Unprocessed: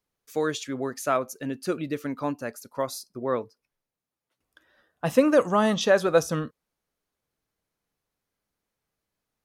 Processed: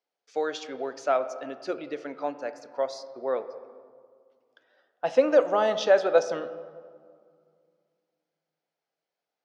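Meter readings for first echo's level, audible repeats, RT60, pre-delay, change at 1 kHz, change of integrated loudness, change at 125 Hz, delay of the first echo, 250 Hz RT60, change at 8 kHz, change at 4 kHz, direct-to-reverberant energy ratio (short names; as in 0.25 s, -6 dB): none, none, 2.1 s, 3 ms, -1.0 dB, -1.0 dB, under -15 dB, none, 2.7 s, n/a, -3.0 dB, 11.0 dB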